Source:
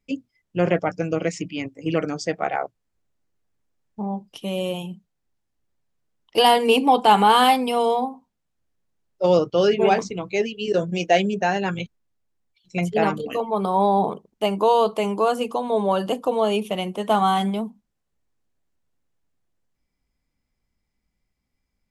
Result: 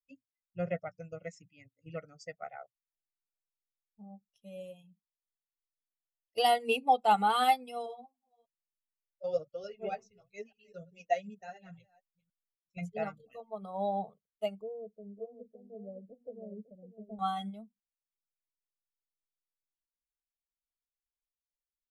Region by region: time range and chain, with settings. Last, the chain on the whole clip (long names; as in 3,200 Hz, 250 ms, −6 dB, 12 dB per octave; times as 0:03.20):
0:07.86–0:12.77: delay that plays each chunk backwards 296 ms, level −14 dB + flanger 1.1 Hz, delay 1.3 ms, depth 8.9 ms, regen +25%
0:14.61–0:17.19: inverse Chebyshev low-pass filter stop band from 2,900 Hz, stop band 80 dB + single-tap delay 554 ms −6 dB
whole clip: spectral dynamics exaggerated over time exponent 1.5; comb filter 1.5 ms, depth 80%; expander for the loud parts 1.5 to 1, over −38 dBFS; level −9 dB